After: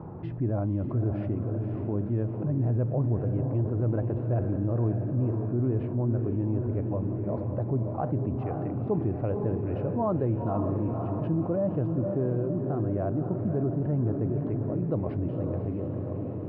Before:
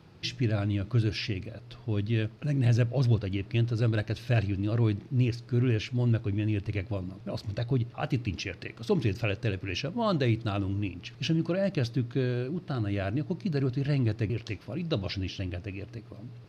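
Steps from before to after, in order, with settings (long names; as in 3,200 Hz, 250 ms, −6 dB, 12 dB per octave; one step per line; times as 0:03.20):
Chebyshev low-pass filter 950 Hz, order 3
low-shelf EQ 190 Hz −5 dB
feedback delay with all-pass diffusion 529 ms, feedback 53%, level −6.5 dB
envelope flattener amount 50%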